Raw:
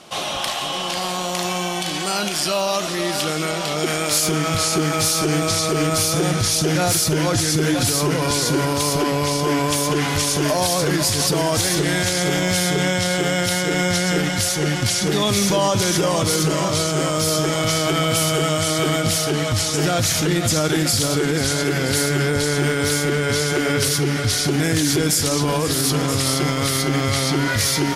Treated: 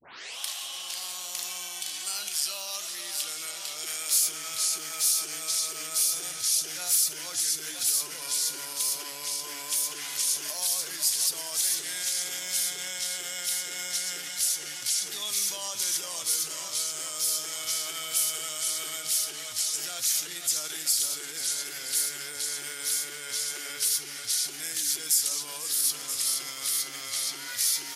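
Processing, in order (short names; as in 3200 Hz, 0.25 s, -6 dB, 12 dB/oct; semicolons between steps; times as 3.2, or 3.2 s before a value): tape start at the beginning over 0.39 s; differentiator; gain -4 dB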